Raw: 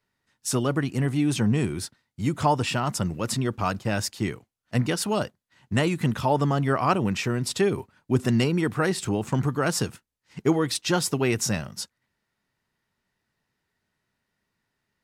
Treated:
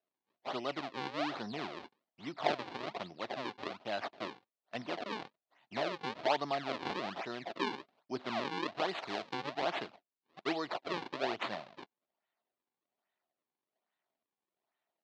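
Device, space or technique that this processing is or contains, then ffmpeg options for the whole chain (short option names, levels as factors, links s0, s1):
circuit-bent sampling toy: -filter_complex "[0:a]acrusher=samples=39:mix=1:aa=0.000001:lfo=1:lforange=62.4:lforate=1.2,highpass=440,equalizer=f=480:t=q:w=4:g=-6,equalizer=f=680:t=q:w=4:g=7,equalizer=f=1500:t=q:w=4:g=-3,equalizer=f=4100:t=q:w=4:g=3,lowpass=f=4400:w=0.5412,lowpass=f=4400:w=1.3066,asettb=1/sr,asplit=3[s0][s1][s2];[s0]atrim=end=8.894[s3];[s1]atrim=start=8.89:end=9.34,asetpts=PTS-STARTPTS,afade=t=in:d=0.004:c=qsin,afade=t=out:st=0.446:d=0.004:c=qsin,highshelf=f=4900:g=7.5[s4];[s2]atrim=start=9.336[s5];[s3][s4]acrossfade=d=0.004:c1=hsin:c2=qsin[s6];[s6][s5]acrossfade=d=0.004:c1=qsin:c2=hsin,volume=0.398"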